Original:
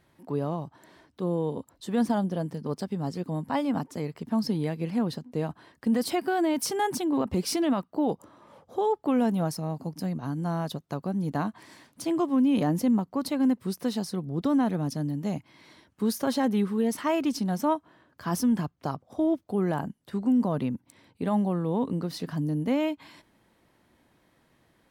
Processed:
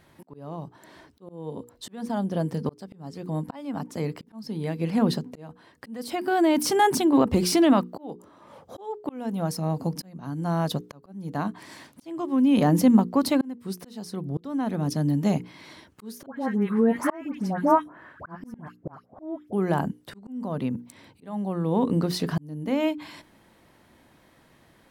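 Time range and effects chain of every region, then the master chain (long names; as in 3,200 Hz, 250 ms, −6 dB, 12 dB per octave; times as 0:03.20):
0:16.26–0:19.53: high shelf with overshoot 2,600 Hz −12.5 dB, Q 1.5 + all-pass dispersion highs, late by 106 ms, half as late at 1,400 Hz + one half of a high-frequency compander encoder only
whole clip: mains-hum notches 60/120/180/240/300/360/420/480 Hz; de-essing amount 55%; volume swells 770 ms; level +7.5 dB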